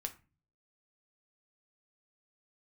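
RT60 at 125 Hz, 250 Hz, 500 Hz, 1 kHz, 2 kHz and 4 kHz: 0.70, 0.55, 0.30, 0.30, 0.30, 0.20 seconds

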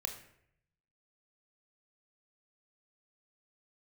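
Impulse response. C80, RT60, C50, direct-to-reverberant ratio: 12.0 dB, 0.70 s, 9.0 dB, 4.0 dB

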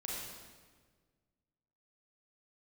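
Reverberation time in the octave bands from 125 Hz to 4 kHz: 2.1, 1.9, 1.7, 1.4, 1.3, 1.2 seconds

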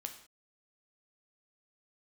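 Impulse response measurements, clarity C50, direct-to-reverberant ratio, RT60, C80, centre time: 9.5 dB, 5.0 dB, non-exponential decay, 12.5 dB, 14 ms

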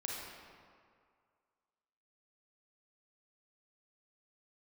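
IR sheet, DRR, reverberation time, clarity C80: −3.0 dB, 2.1 s, 1.0 dB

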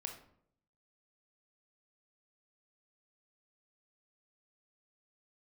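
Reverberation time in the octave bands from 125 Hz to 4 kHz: 0.95, 0.85, 0.75, 0.60, 0.50, 0.40 seconds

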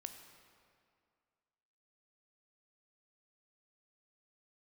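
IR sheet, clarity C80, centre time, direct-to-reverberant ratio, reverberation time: 8.0 dB, 34 ms, 6.0 dB, 2.2 s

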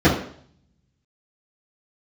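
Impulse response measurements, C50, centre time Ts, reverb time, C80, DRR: 5.5 dB, 33 ms, 0.60 s, 10.0 dB, −12.5 dB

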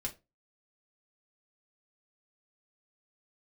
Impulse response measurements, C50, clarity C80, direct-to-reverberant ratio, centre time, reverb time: 16.0 dB, 23.5 dB, −0.5 dB, 9 ms, 0.25 s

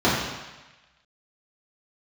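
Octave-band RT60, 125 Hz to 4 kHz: 1.1, 1.0, 1.1, 1.2, 1.3, 1.2 seconds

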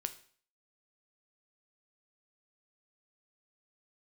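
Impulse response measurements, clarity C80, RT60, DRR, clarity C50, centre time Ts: 18.0 dB, 0.50 s, 8.5 dB, 14.5 dB, 6 ms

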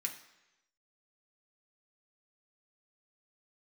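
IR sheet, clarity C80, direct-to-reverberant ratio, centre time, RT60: 12.0 dB, 0.5 dB, 17 ms, 1.0 s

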